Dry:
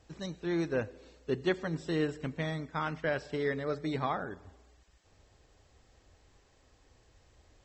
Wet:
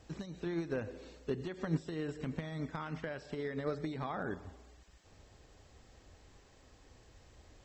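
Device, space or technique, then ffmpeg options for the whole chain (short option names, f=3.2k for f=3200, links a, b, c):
de-esser from a sidechain: -filter_complex "[0:a]equalizer=f=210:w=1.3:g=3,asplit=2[a][b];[b]highpass=4.4k,apad=whole_len=336930[c];[a][c]sidechaincompress=threshold=-59dB:ratio=8:attack=0.65:release=95,volume=3dB"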